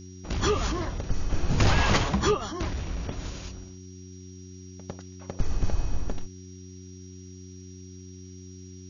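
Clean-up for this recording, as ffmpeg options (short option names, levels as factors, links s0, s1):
-af "bandreject=f=92.4:t=h:w=4,bandreject=f=184.8:t=h:w=4,bandreject=f=277.2:t=h:w=4,bandreject=f=369.6:t=h:w=4,bandreject=f=5700:w=30,afftdn=nr=26:nf=-44"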